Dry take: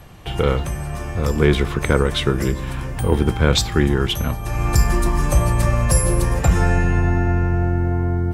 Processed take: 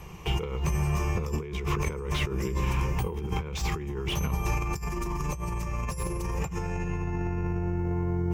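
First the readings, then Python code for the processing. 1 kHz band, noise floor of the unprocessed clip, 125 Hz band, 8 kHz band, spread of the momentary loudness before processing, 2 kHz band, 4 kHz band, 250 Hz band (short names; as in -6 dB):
-9.0 dB, -28 dBFS, -11.0 dB, -13.0 dB, 7 LU, -11.5 dB, -12.5 dB, -11.0 dB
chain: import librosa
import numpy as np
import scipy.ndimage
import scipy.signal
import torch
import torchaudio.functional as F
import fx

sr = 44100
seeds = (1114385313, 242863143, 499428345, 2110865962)

y = fx.ripple_eq(x, sr, per_octave=0.77, db=11)
y = fx.over_compress(y, sr, threshold_db=-22.0, ratio=-1.0)
y = fx.slew_limit(y, sr, full_power_hz=220.0)
y = y * 10.0 ** (-7.5 / 20.0)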